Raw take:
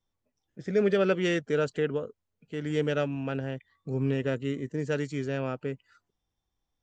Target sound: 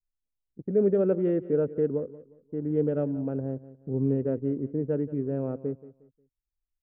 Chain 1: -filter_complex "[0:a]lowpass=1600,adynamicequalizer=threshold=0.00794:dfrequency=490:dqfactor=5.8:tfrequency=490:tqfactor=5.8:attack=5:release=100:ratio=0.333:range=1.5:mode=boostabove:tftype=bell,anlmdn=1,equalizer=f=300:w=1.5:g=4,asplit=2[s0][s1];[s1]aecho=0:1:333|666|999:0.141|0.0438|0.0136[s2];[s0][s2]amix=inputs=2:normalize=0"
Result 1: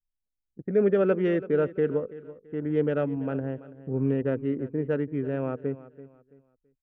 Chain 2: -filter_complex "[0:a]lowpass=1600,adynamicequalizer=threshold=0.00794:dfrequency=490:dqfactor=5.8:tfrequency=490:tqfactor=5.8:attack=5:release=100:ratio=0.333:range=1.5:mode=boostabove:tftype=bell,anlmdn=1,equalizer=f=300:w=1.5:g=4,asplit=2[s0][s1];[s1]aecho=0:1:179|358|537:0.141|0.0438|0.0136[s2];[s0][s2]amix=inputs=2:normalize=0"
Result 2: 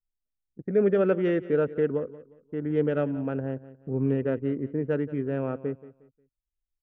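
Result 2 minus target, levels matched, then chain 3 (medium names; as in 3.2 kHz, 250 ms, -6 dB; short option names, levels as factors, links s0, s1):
2 kHz band +13.0 dB
-filter_complex "[0:a]lowpass=630,adynamicequalizer=threshold=0.00794:dfrequency=490:dqfactor=5.8:tfrequency=490:tqfactor=5.8:attack=5:release=100:ratio=0.333:range=1.5:mode=boostabove:tftype=bell,anlmdn=1,equalizer=f=300:w=1.5:g=4,asplit=2[s0][s1];[s1]aecho=0:1:179|358|537:0.141|0.0438|0.0136[s2];[s0][s2]amix=inputs=2:normalize=0"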